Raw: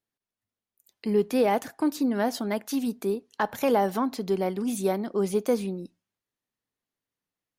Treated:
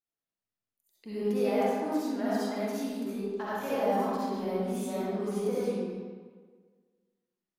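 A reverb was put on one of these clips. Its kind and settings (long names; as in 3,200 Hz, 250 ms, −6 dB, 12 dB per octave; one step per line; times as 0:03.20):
comb and all-pass reverb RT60 1.6 s, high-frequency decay 0.7×, pre-delay 25 ms, DRR −10 dB
level −15 dB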